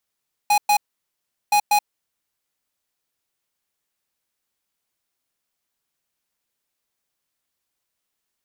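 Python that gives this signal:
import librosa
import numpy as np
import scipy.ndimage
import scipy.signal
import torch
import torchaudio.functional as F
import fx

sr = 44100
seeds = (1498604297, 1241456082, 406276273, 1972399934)

y = fx.beep_pattern(sr, wave='square', hz=829.0, on_s=0.08, off_s=0.11, beeps=2, pause_s=0.75, groups=2, level_db=-16.0)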